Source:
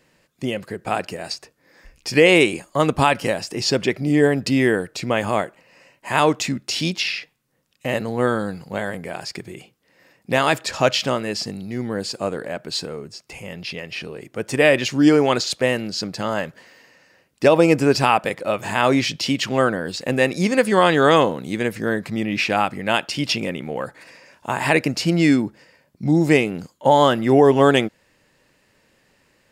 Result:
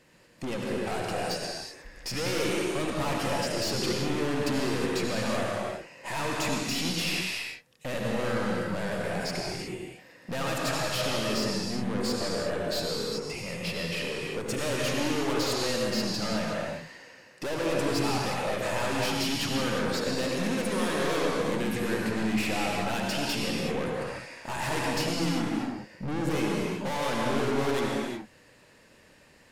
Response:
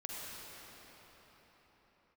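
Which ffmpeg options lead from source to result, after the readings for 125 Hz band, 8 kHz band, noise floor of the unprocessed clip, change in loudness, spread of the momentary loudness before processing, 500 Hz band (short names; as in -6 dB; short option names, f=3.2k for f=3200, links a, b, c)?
-8.0 dB, -3.5 dB, -62 dBFS, -10.0 dB, 15 LU, -10.5 dB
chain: -filter_complex "[0:a]aeval=exprs='(tanh(35.5*val(0)+0.3)-tanh(0.3))/35.5':c=same[a];[1:a]atrim=start_sample=2205,afade=t=out:st=0.27:d=0.01,atrim=end_sample=12348,asetrate=26019,aresample=44100[b];[a][b]afir=irnorm=-1:irlink=0,volume=2.5dB"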